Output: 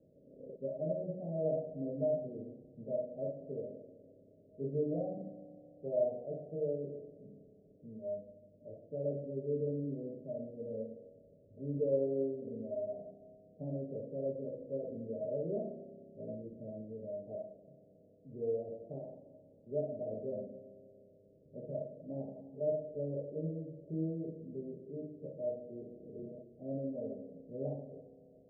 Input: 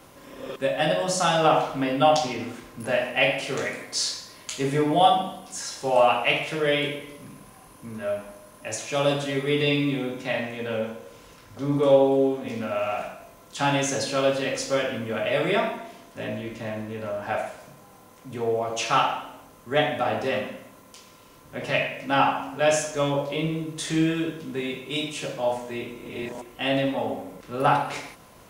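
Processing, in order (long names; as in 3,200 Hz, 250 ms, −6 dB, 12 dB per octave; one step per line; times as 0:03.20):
Chebyshev low-pass with heavy ripple 650 Hz, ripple 6 dB
low-shelf EQ 77 Hz −8 dB
spring reverb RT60 2.7 s, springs 30 ms, chirp 50 ms, DRR 11 dB
level −8.5 dB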